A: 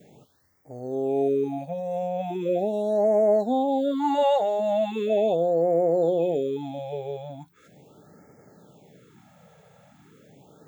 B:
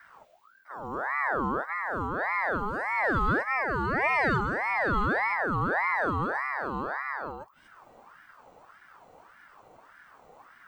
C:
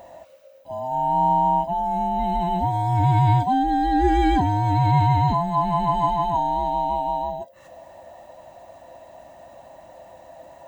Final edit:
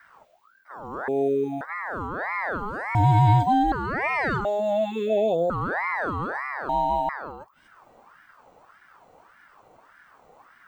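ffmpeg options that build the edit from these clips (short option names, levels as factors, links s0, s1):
-filter_complex "[0:a]asplit=2[s0][s1];[2:a]asplit=2[s2][s3];[1:a]asplit=5[s4][s5][s6][s7][s8];[s4]atrim=end=1.082[s9];[s0]atrim=start=1.078:end=1.612[s10];[s5]atrim=start=1.608:end=2.952[s11];[s2]atrim=start=2.948:end=3.722[s12];[s6]atrim=start=3.718:end=4.452[s13];[s1]atrim=start=4.448:end=5.502[s14];[s7]atrim=start=5.498:end=6.692[s15];[s3]atrim=start=6.688:end=7.092[s16];[s8]atrim=start=7.088[s17];[s9][s10]acrossfade=d=0.004:c1=hsin:c2=hsin[s18];[s18][s11]acrossfade=d=0.004:c1=hsin:c2=hsin[s19];[s19][s12]acrossfade=d=0.004:c1=hsin:c2=hsin[s20];[s20][s13]acrossfade=d=0.004:c1=hsin:c2=hsin[s21];[s21][s14]acrossfade=d=0.004:c1=hsin:c2=hsin[s22];[s22][s15]acrossfade=d=0.004:c1=hsin:c2=hsin[s23];[s23][s16]acrossfade=d=0.004:c1=hsin:c2=hsin[s24];[s24][s17]acrossfade=d=0.004:c1=hsin:c2=hsin"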